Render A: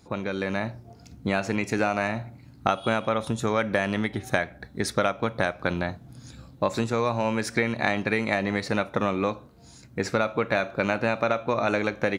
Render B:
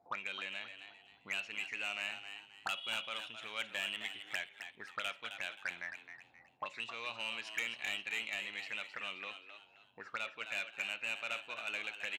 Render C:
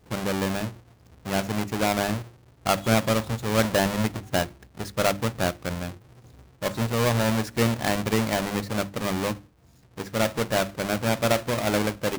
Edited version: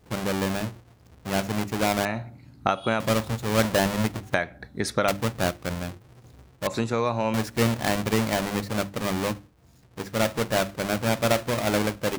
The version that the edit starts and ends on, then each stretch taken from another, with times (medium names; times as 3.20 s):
C
2.05–3.00 s: from A
4.34–5.08 s: from A
6.67–7.34 s: from A
not used: B